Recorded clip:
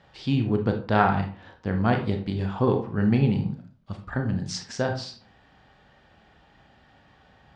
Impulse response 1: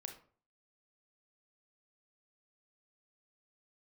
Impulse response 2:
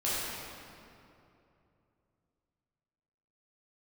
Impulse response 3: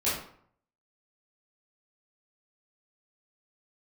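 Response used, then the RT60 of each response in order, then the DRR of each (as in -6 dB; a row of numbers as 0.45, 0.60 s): 1; 0.45, 2.8, 0.60 s; 4.0, -10.0, -11.0 dB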